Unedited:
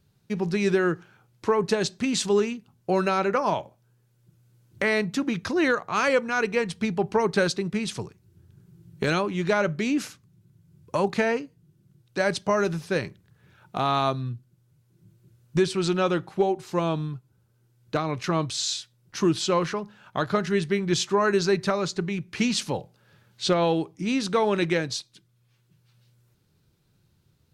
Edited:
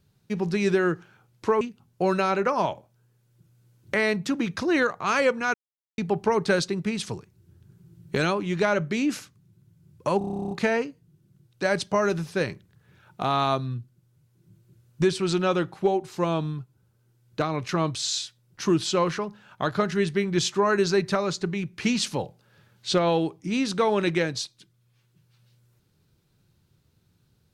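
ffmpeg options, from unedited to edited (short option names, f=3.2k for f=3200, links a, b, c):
-filter_complex "[0:a]asplit=15[a][b][c][d][e][f][g][h][i][j][k][l][m][n][o];[a]atrim=end=1.612[p];[b]atrim=start=2.488:end=6.42,asetpts=PTS-STARTPTS,afade=t=out:st=3.928:d=0.004:c=hsin[q];[c]atrim=start=6.42:end=6.86,asetpts=PTS-STARTPTS,volume=0[r];[d]atrim=start=6.86:end=11.092,asetpts=PTS-STARTPTS,afade=t=in:d=0.004:c=hsin[s];[e]atrim=start=11.058:end=11.092[t];[f]atrim=start=11.058:end=11.092[u];[g]atrim=start=11.058:end=11.092[v];[h]atrim=start=11.058:end=11.092[w];[i]atrim=start=11.058:end=11.092[x];[j]atrim=start=11.058:end=11.092[y];[k]atrim=start=11.058:end=11.092[z];[l]atrim=start=11.058:end=11.092[aa];[m]atrim=start=11.058:end=11.092[ab];[n]atrim=start=11.058:end=11.092[ac];[o]atrim=start=11.058[ad];[q][r][s]concat=n=3:v=0:a=1[ae];[p][ae]acrossfade=d=0.004:c1=hsin:c2=hsin[af];[af][t]acrossfade=d=0.004:c1=hsin:c2=hsin[ag];[ag][u]acrossfade=d=0.004:c1=hsin:c2=hsin[ah];[ah][v]acrossfade=d=0.004:c1=hsin:c2=hsin[ai];[ai][w]acrossfade=d=0.004:c1=hsin:c2=hsin[aj];[aj][x]acrossfade=d=0.004:c1=hsin:c2=hsin[ak];[ak][y]acrossfade=d=0.004:c1=hsin:c2=hsin[al];[al][z]acrossfade=d=0.004:c1=hsin:c2=hsin[am];[am][aa]acrossfade=d=0.004:c1=hsin:c2=hsin[an];[an][ab]acrossfade=d=0.004:c1=hsin:c2=hsin[ao];[ao][ac]acrossfade=d=0.004:c1=hsin:c2=hsin[ap];[ap][ad]acrossfade=d=0.004:c1=hsin:c2=hsin"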